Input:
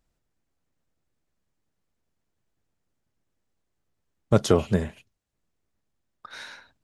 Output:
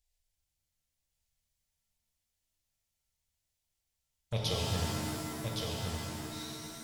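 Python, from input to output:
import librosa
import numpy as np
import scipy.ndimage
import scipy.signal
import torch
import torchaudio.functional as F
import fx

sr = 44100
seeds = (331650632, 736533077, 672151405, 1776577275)

p1 = fx.env_phaser(x, sr, low_hz=210.0, high_hz=1400.0, full_db=-22.5)
p2 = fx.tone_stack(p1, sr, knobs='10-0-10')
p3 = p2 + fx.echo_single(p2, sr, ms=1116, db=-4.5, dry=0)
y = fx.rev_shimmer(p3, sr, seeds[0], rt60_s=2.5, semitones=7, shimmer_db=-2, drr_db=-2.0)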